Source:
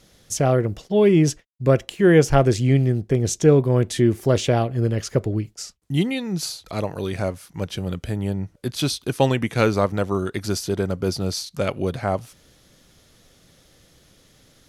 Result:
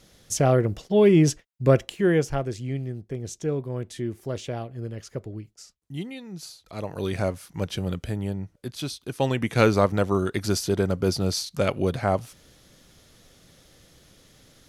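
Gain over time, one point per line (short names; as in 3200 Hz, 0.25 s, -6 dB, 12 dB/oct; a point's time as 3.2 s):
1.8 s -1 dB
2.46 s -12.5 dB
6.62 s -12.5 dB
7.05 s -1 dB
7.86 s -1 dB
8.99 s -10 dB
9.58 s 0 dB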